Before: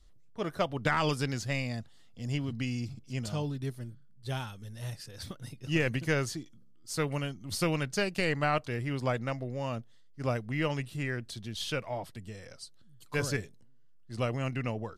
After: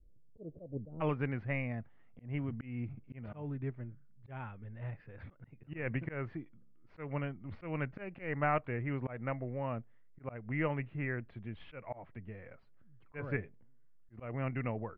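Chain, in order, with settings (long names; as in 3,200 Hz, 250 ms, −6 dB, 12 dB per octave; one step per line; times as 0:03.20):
elliptic low-pass filter 540 Hz, stop band 80 dB, from 0:01.00 2,300 Hz
volume swells 193 ms
level −2 dB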